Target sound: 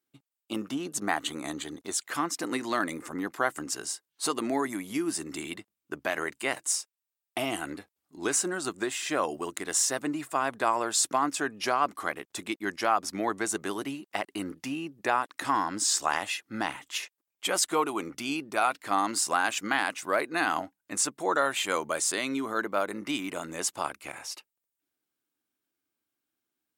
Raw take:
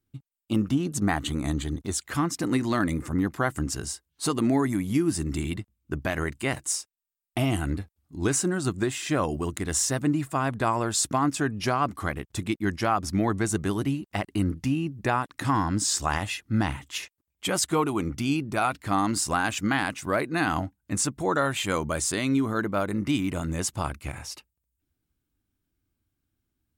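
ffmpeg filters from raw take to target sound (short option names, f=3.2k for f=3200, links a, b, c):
-af "highpass=410"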